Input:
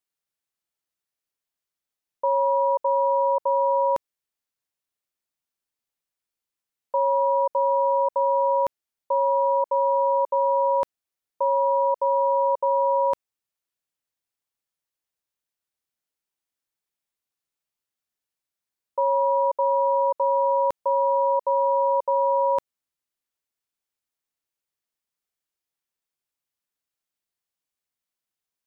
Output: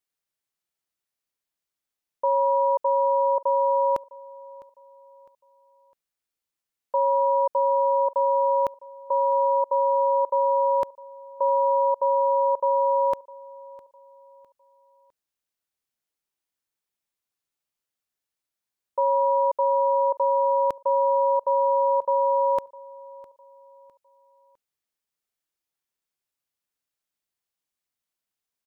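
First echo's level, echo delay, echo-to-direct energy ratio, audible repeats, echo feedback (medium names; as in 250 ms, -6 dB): -21.0 dB, 656 ms, -20.5 dB, 2, 36%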